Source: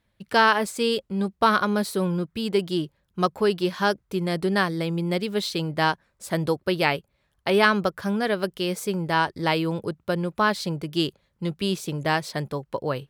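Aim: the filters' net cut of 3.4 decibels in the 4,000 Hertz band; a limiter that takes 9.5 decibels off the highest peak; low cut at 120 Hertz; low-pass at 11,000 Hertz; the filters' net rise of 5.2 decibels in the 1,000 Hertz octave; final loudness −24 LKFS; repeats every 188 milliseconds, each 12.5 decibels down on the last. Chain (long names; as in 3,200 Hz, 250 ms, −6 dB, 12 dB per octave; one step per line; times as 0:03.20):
high-pass filter 120 Hz
low-pass filter 11,000 Hz
parametric band 1,000 Hz +6.5 dB
parametric band 4,000 Hz −5 dB
brickwall limiter −11.5 dBFS
repeating echo 188 ms, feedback 24%, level −12.5 dB
level +1.5 dB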